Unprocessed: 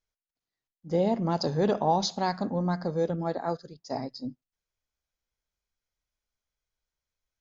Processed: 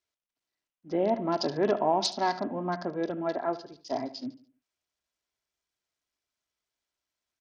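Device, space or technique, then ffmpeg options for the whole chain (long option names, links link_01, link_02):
Bluetooth headset: -filter_complex "[0:a]highpass=51,aecho=1:1:3:0.55,asplit=3[link_01][link_02][link_03];[link_01]afade=type=out:start_time=2.96:duration=0.02[link_04];[link_02]highshelf=frequency=4000:gain=6,afade=type=in:start_time=2.96:duration=0.02,afade=type=out:start_time=3.61:duration=0.02[link_05];[link_03]afade=type=in:start_time=3.61:duration=0.02[link_06];[link_04][link_05][link_06]amix=inputs=3:normalize=0,highpass=frequency=200:poles=1,aecho=1:1:73|146|219|292:0.168|0.0672|0.0269|0.0107,aresample=16000,aresample=44100" -ar 48000 -c:a sbc -b:a 64k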